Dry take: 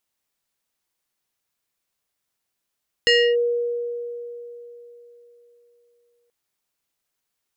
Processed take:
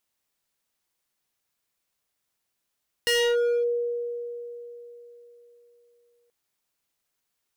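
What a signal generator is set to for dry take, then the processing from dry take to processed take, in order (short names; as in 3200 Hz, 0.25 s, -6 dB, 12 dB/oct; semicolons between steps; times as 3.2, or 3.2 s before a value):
FM tone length 3.23 s, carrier 477 Hz, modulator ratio 4.97, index 1.6, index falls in 0.29 s linear, decay 3.65 s, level -12 dB
overloaded stage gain 21.5 dB; de-hum 385.1 Hz, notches 28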